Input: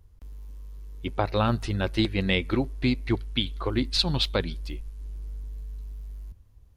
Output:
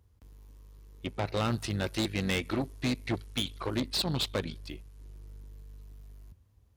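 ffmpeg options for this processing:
-filter_complex "[0:a]asettb=1/sr,asplit=3[a][b][c];[a]atrim=end=1.374[d];[b]atrim=start=1.37:end=3.8,asetpts=PTS-STARTPTS,afade=t=in:d=0.004:c=qsin,afade=t=out:st=2.426:d=0.004:c=qsin,highshelf=f=4k:g=8[e];[c]atrim=start=3.796[f];[d][e]acrossfade=d=0.004:c1=hsin:c2=qsin[g];[g][f]acrossfade=d=0.004:c1=qsin:c2=hsin,aeval=exprs='(tanh(15.8*val(0)+0.65)-tanh(0.65))/15.8':c=same,highpass=77"

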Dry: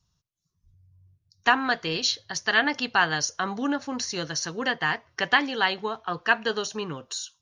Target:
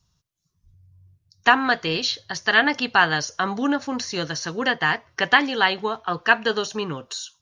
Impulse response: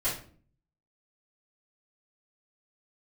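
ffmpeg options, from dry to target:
-filter_complex "[0:a]acrossover=split=4300[a][b];[b]acompressor=threshold=-38dB:ratio=4:attack=1:release=60[c];[a][c]amix=inputs=2:normalize=0,volume=4.5dB"

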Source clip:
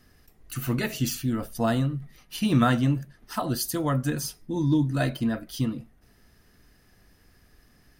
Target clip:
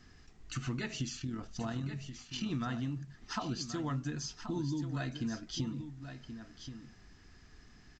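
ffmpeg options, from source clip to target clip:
-filter_complex "[0:a]equalizer=f=550:t=o:w=0.38:g=-11,acompressor=threshold=-34dB:ratio=6,asettb=1/sr,asplit=3[a][b][c];[a]atrim=end=1.194[d];[b]atrim=start=1.19:end=2.47,asetpts=PTS-STARTPTS,afade=t=in:d=0.004:c=qsin,afade=t=out:st=1.276:d=0.004:c=qsin,tremolo=f=40:d=0.462[e];[c]atrim=start=2.466[f];[d][e]acrossfade=d=0.004:c1=hsin:c2=qsin[g];[g][f]acrossfade=d=0.004:c1=qsin:c2=hsin,aecho=1:1:1079:0.316" -ar 16000 -c:a pcm_alaw

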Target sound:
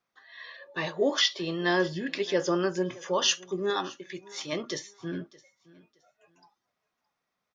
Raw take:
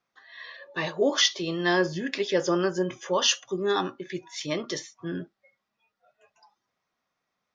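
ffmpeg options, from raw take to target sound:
-filter_complex "[0:a]asettb=1/sr,asplit=3[a][b][c];[a]atrim=end=1.194[d];[b]atrim=start=1.19:end=2.16,asetpts=PTS-STARTPTS,afade=t=in:d=0.004:c=qsin,afade=t=out:st=0.966:d=0.004:c=qsin,bandreject=f=6.3k:w=5.2[e];[c]atrim=start=2.156[f];[d][e]acrossfade=d=0.004:c1=hsin:c2=qsin[g];[g][f]acrossfade=d=0.004:c1=qsin:c2=hsin,asettb=1/sr,asplit=3[h][i][j];[h]atrim=end=3.704[k];[i]atrim=start=3.7:end=4.53,asetpts=PTS-STARTPTS,afade=t=in:d=0.004:c=qsin,afade=t=out:st=0.826:d=0.004:c=qsin,lowshelf=f=370:g=-8[l];[j]atrim=start=4.526[m];[k][l]acrossfade=d=0.004:c1=hsin:c2=qsin[n];[n][m]acrossfade=d=0.004:c1=qsin:c2=hsin,aecho=1:1:618|1236:0.0794|0.0199,volume=-2dB"

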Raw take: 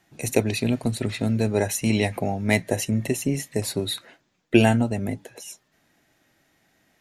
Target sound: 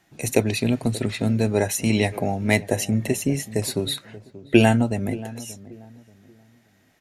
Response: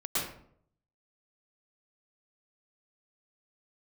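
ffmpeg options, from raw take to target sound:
-filter_complex "[0:a]asplit=2[a][b];[b]adelay=582,lowpass=f=850:p=1,volume=-16.5dB,asplit=2[c][d];[d]adelay=582,lowpass=f=850:p=1,volume=0.32,asplit=2[e][f];[f]adelay=582,lowpass=f=850:p=1,volume=0.32[g];[a][c][e][g]amix=inputs=4:normalize=0,volume=1.5dB"

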